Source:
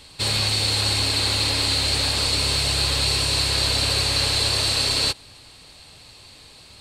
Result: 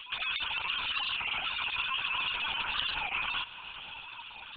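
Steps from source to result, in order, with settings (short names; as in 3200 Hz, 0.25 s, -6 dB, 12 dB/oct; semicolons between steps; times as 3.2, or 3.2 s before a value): sine-wave speech; compressor 2.5:1, threshold -35 dBFS, peak gain reduction 12 dB; Chebyshev band-stop 310–620 Hz, order 5; fixed phaser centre 2900 Hz, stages 8; diffused feedback echo 0.963 s, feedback 40%, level -16 dB; time stretch by phase-locked vocoder 0.67×; LPC vocoder at 8 kHz pitch kept; record warp 33 1/3 rpm, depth 160 cents; gain +3 dB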